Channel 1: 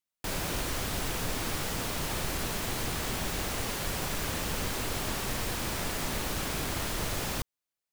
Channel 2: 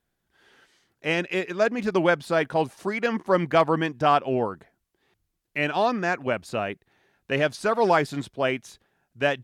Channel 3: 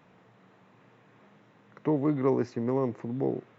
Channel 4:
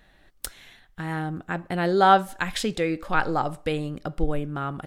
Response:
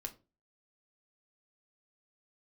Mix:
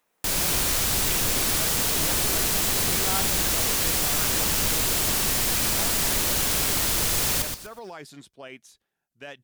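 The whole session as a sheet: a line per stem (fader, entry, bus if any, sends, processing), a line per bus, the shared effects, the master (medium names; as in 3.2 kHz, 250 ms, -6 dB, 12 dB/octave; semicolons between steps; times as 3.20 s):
+2.5 dB, 0.00 s, no send, echo send -6 dB, none
-15.0 dB, 0.00 s, no send, no echo send, peaking EQ 110 Hz -6 dB 0.45 oct; peak limiter -17 dBFS, peak gain reduction 8 dB
-7.5 dB, 0.00 s, no send, no echo send, high-pass 380 Hz 12 dB/octave; saturation -30.5 dBFS, distortion -9 dB; upward expansion 1.5:1, over -46 dBFS
-17.0 dB, 1.05 s, no send, no echo send, none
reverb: none
echo: feedback delay 123 ms, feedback 24%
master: treble shelf 3.4 kHz +11.5 dB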